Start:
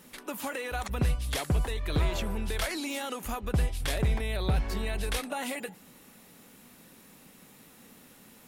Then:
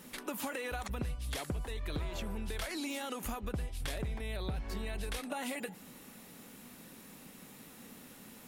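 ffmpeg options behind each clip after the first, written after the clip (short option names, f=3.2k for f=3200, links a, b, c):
-af "equalizer=f=240:t=o:w=0.77:g=2,acompressor=threshold=-36dB:ratio=6,volume=1dB"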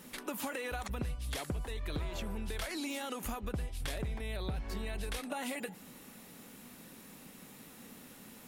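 -af anull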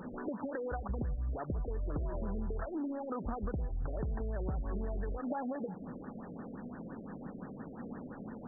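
-af "acompressor=threshold=-42dB:ratio=6,asoftclip=type=tanh:threshold=-36.5dB,afftfilt=real='re*lt(b*sr/1024,670*pow(1900/670,0.5+0.5*sin(2*PI*5.8*pts/sr)))':imag='im*lt(b*sr/1024,670*pow(1900/670,0.5+0.5*sin(2*PI*5.8*pts/sr)))':win_size=1024:overlap=0.75,volume=10.5dB"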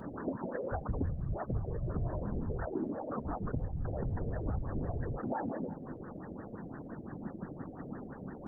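-af "afftfilt=real='hypot(re,im)*cos(2*PI*random(0))':imag='hypot(re,im)*sin(2*PI*random(1))':win_size=512:overlap=0.75,volume=7dB"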